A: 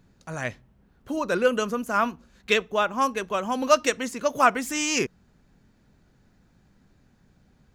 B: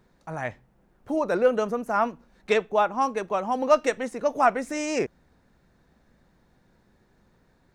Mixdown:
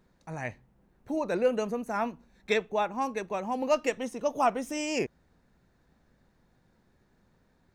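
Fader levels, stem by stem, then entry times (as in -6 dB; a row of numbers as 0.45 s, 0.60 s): -13.5 dB, -5.0 dB; 0.00 s, 0.00 s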